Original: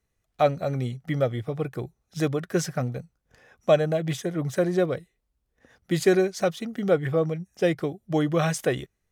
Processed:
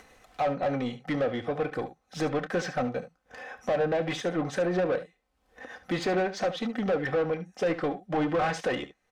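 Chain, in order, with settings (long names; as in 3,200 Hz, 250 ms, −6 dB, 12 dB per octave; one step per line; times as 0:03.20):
treble cut that deepens with the level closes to 2,400 Hz, closed at −18 dBFS
parametric band 750 Hz +4 dB 0.6 octaves
comb filter 3.9 ms, depth 49%
brickwall limiter −15.5 dBFS, peak gain reduction 10.5 dB
upward compression, threshold −40 dBFS
mid-hump overdrive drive 19 dB, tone 2,000 Hz, clips at −15.5 dBFS
ambience of single reflections 28 ms −15.5 dB, 72 ms −13.5 dB
level −4 dB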